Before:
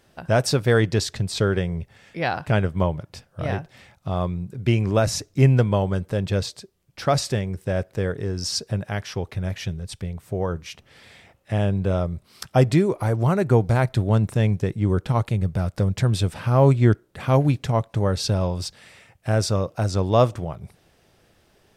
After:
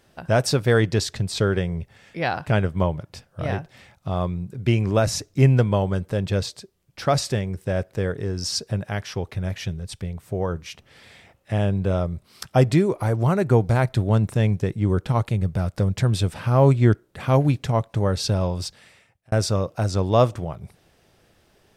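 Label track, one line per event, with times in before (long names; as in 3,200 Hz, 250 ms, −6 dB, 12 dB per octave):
18.650000	19.320000	fade out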